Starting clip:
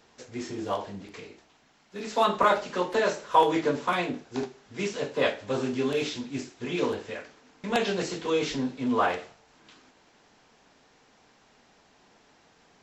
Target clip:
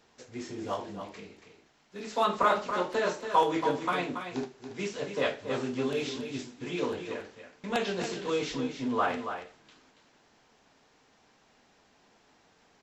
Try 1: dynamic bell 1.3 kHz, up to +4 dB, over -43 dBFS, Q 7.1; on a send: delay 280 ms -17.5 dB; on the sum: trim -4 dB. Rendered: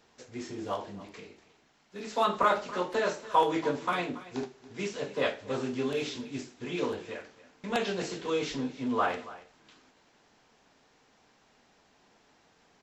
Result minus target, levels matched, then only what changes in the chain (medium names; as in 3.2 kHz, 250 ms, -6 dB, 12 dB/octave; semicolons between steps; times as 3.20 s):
echo-to-direct -9 dB
change: delay 280 ms -8.5 dB